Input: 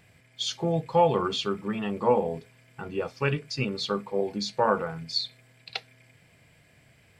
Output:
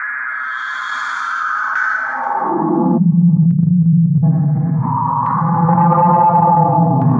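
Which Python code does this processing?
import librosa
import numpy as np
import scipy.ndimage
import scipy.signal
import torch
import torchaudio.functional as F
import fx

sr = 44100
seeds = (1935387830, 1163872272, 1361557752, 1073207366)

p1 = fx.paulstretch(x, sr, seeds[0], factor=9.0, window_s=0.1, from_s=0.32)
p2 = fx.curve_eq(p1, sr, hz=(100.0, 250.0, 430.0, 1100.0, 1800.0, 2900.0, 9100.0), db=(0, 13, -17, 8, 5, -28, 2))
p3 = 10.0 ** (-12.5 / 20.0) * np.tanh(p2 / 10.0 ** (-12.5 / 20.0))
p4 = fx.rev_freeverb(p3, sr, rt60_s=1.6, hf_ratio=0.5, predelay_ms=60, drr_db=12.0)
p5 = fx.spec_erase(p4, sr, start_s=2.98, length_s=1.25, low_hz=220.0, high_hz=6000.0)
p6 = fx.level_steps(p5, sr, step_db=23)
p7 = p5 + (p6 * librosa.db_to_amplitude(1.5))
p8 = fx.filter_sweep_highpass(p7, sr, from_hz=1400.0, to_hz=110.0, start_s=1.41, end_s=3.55, q=3.8)
p9 = fx.peak_eq(p8, sr, hz=120.0, db=-3.0, octaves=1.6)
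p10 = fx.filter_lfo_lowpass(p9, sr, shape='saw_down', hz=0.57, low_hz=840.0, high_hz=1800.0, q=1.6)
p11 = p10 + fx.echo_single(p10, sr, ms=481, db=-20.5, dry=0)
p12 = fx.env_flatten(p11, sr, amount_pct=70)
y = p12 * librosa.db_to_amplitude(-3.0)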